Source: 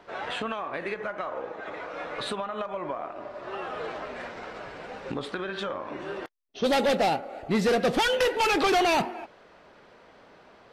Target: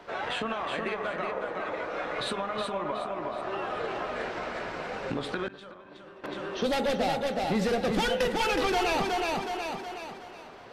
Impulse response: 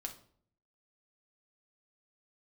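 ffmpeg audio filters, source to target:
-filter_complex "[0:a]asplit=2[a][b];[b]aecho=0:1:369|738|1107|1476|1845:0.596|0.226|0.086|0.0327|0.0124[c];[a][c]amix=inputs=2:normalize=0,acrossover=split=130[d][e];[e]acompressor=threshold=-35dB:ratio=2[f];[d][f]amix=inputs=2:normalize=0,bandreject=f=67.99:t=h:w=4,bandreject=f=135.98:t=h:w=4,bandreject=f=203.97:t=h:w=4,bandreject=f=271.96:t=h:w=4,bandreject=f=339.95:t=h:w=4,bandreject=f=407.94:t=h:w=4,bandreject=f=475.93:t=h:w=4,bandreject=f=543.92:t=h:w=4,bandreject=f=611.91:t=h:w=4,bandreject=f=679.9:t=h:w=4,bandreject=f=747.89:t=h:w=4,bandreject=f=815.88:t=h:w=4,bandreject=f=883.87:t=h:w=4,bandreject=f=951.86:t=h:w=4,bandreject=f=1.01985k:t=h:w=4,bandreject=f=1.08784k:t=h:w=4,bandreject=f=1.15583k:t=h:w=4,bandreject=f=1.22382k:t=h:w=4,bandreject=f=1.29181k:t=h:w=4,bandreject=f=1.3598k:t=h:w=4,bandreject=f=1.42779k:t=h:w=4,bandreject=f=1.49578k:t=h:w=4,bandreject=f=1.56377k:t=h:w=4,bandreject=f=1.63176k:t=h:w=4,bandreject=f=1.69975k:t=h:w=4,bandreject=f=1.76774k:t=h:w=4,bandreject=f=1.83573k:t=h:w=4,bandreject=f=1.90372k:t=h:w=4,bandreject=f=1.97171k:t=h:w=4,bandreject=f=2.0397k:t=h:w=4,asettb=1/sr,asplit=3[g][h][i];[g]atrim=end=5.484[j];[h]atrim=start=5.48:end=6.24,asetpts=PTS-STARTPTS,afade=t=in:d=0.004:c=qsin,afade=t=out:st=0.756:d=0.004:c=qsin,agate=range=-33dB:threshold=-25dB:ratio=3:detection=peak[k];[i]atrim=start=6.236[l];[j][k]acrossfade=d=0.004:c1=hsin:c2=qsin[m];[m][l]acrossfade=d=0.004:c1=qsin:c2=hsin,volume=4dB"

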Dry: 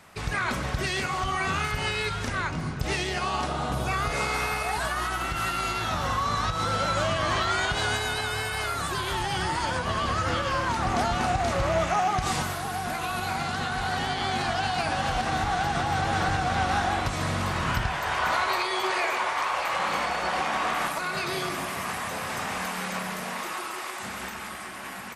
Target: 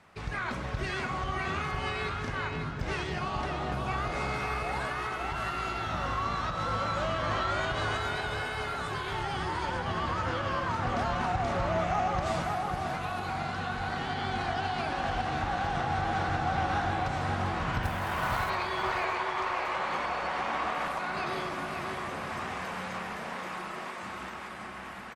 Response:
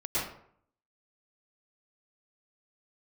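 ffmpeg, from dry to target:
-filter_complex "[0:a]aemphasis=mode=reproduction:type=50fm,asplit=2[a][b];[1:a]atrim=start_sample=2205,asetrate=70560,aresample=44100[c];[b][c]afir=irnorm=-1:irlink=0,volume=-21dB[d];[a][d]amix=inputs=2:normalize=0,asettb=1/sr,asplit=3[e][f][g];[e]atrim=end=17.834[h];[f]atrim=start=17.83:end=18.5,asetpts=PTS-STARTPTS,afade=t=in:d=0.004:c=qsin,afade=t=out:st=0.666:d=0.004:c=qsin,acrusher=bits=4:mode=log:mix=0:aa=0.000001[i];[g]atrim=start=18.496[j];[h][i]acrossfade=d=0.004:c1=hsin:c2=qsin[k];[k][j]acrossfade=d=0.004:c1=qsin:c2=hsin,aeval=exprs='0.224*(cos(1*acos(clip(val(0)/0.224,-1,1)))-cos(1*PI/2))+0.00501*(cos(6*acos(clip(val(0)/0.224,-1,1)))-cos(6*PI/2))':c=same,asplit=2[l][m];[m]adelay=550,lowpass=f=3k:p=1,volume=-3.5dB,asplit=2[n][o];[o]adelay=550,lowpass=f=3k:p=1,volume=0.37,asplit=2[p][q];[q]adelay=550,lowpass=f=3k:p=1,volume=0.37,asplit=2[r][s];[s]adelay=550,lowpass=f=3k:p=1,volume=0.37,asplit=2[t][u];[u]adelay=550,lowpass=f=3k:p=1,volume=0.37[v];[n][p][r][t][v]amix=inputs=5:normalize=0[w];[l][w]amix=inputs=2:normalize=0,volume=-6dB" -ar 48000 -c:a libopus -b:a 64k

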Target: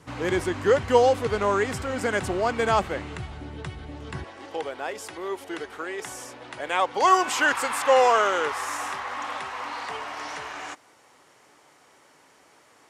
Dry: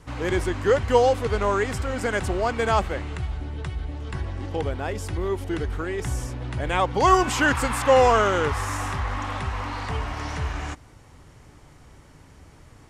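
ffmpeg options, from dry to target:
-af "asetnsamples=n=441:p=0,asendcmd='4.24 highpass f 470',highpass=120"

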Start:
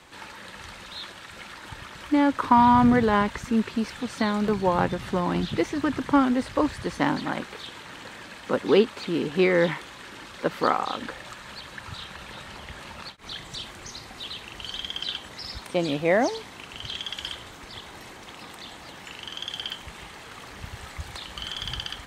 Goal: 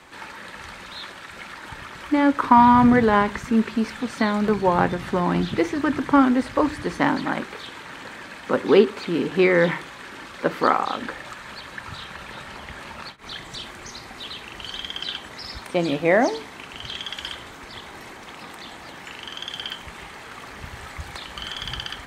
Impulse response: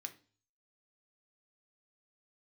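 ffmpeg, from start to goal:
-filter_complex "[0:a]asplit=2[a][b];[1:a]atrim=start_sample=2205,lowpass=2.6k[c];[b][c]afir=irnorm=-1:irlink=0,volume=-0.5dB[d];[a][d]amix=inputs=2:normalize=0,volume=1dB"

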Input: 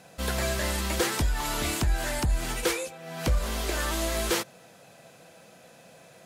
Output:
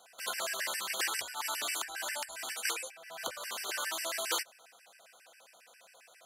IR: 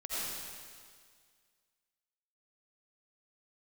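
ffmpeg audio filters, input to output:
-af "highpass=870,afftfilt=real='re*gt(sin(2*PI*7.4*pts/sr)*(1-2*mod(floor(b*sr/1024/1500),2)),0)':imag='im*gt(sin(2*PI*7.4*pts/sr)*(1-2*mod(floor(b*sr/1024/1500),2)),0)':win_size=1024:overlap=0.75"

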